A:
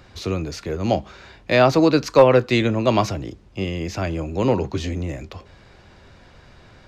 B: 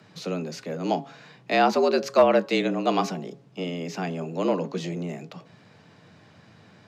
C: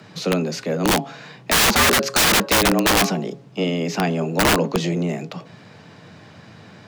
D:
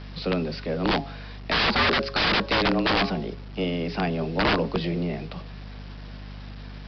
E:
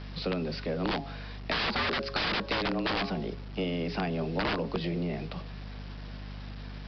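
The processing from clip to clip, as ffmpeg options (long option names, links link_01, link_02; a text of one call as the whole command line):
ffmpeg -i in.wav -af "afreqshift=83,bandreject=frequency=137.8:width_type=h:width=4,bandreject=frequency=275.6:width_type=h:width=4,bandreject=frequency=413.4:width_type=h:width=4,bandreject=frequency=551.2:width_type=h:width=4,bandreject=frequency=689:width_type=h:width=4,bandreject=frequency=826.8:width_type=h:width=4,bandreject=frequency=964.6:width_type=h:width=4,bandreject=frequency=1102.4:width_type=h:width=4,volume=-5dB" out.wav
ffmpeg -i in.wav -af "aeval=exprs='(mod(9.44*val(0)+1,2)-1)/9.44':channel_layout=same,volume=9dB" out.wav
ffmpeg -i in.wav -af "aeval=exprs='val(0)+0.0224*(sin(2*PI*50*n/s)+sin(2*PI*2*50*n/s)/2+sin(2*PI*3*50*n/s)/3+sin(2*PI*4*50*n/s)/4+sin(2*PI*5*50*n/s)/5)':channel_layout=same,aresample=11025,acrusher=bits=6:mix=0:aa=0.000001,aresample=44100,volume=-5dB" out.wav
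ffmpeg -i in.wav -af "acompressor=threshold=-25dB:ratio=6,volume=-2dB" out.wav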